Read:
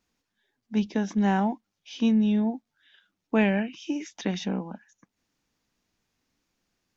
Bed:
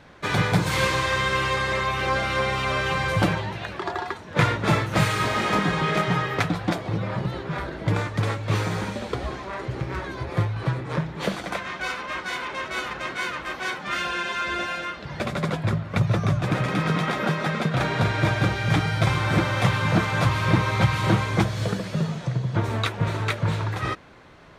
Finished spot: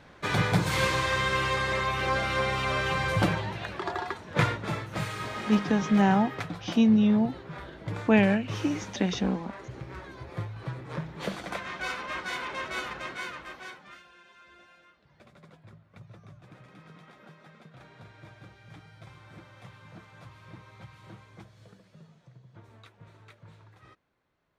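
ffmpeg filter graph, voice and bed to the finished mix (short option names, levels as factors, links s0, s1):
-filter_complex "[0:a]adelay=4750,volume=1.19[s0];[1:a]volume=1.58,afade=t=out:st=4.37:d=0.3:silence=0.398107,afade=t=in:st=10.63:d=1.29:silence=0.421697,afade=t=out:st=12.69:d=1.34:silence=0.0630957[s1];[s0][s1]amix=inputs=2:normalize=0"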